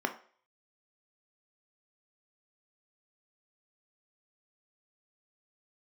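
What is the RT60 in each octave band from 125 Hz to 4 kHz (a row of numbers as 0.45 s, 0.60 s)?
0.30 s, 0.35 s, 0.45 s, 0.45 s, 0.45 s, 0.45 s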